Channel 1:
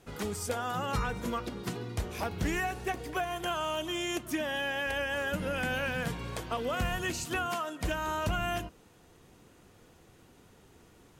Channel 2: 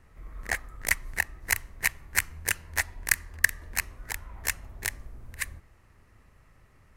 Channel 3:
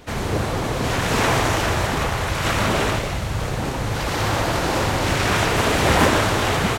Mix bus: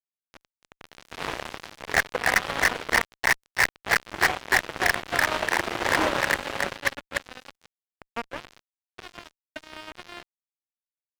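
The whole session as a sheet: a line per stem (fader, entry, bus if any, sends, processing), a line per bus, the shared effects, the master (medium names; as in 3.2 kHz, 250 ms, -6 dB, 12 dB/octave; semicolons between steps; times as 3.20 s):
-6.0 dB, 1.65 s, no send, no echo send, low-pass 1.1 kHz 12 dB/octave; bass shelf 110 Hz -8 dB
+2.5 dB, 1.45 s, no send, echo send -5 dB, three-band isolator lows -23 dB, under 440 Hz, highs -18 dB, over 2.2 kHz
-19.5 dB, 0.00 s, no send, echo send -12 dB, none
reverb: none
echo: feedback delay 295 ms, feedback 19%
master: three-band isolator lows -17 dB, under 310 Hz, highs -14 dB, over 2.3 kHz; fuzz box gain 33 dB, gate -37 dBFS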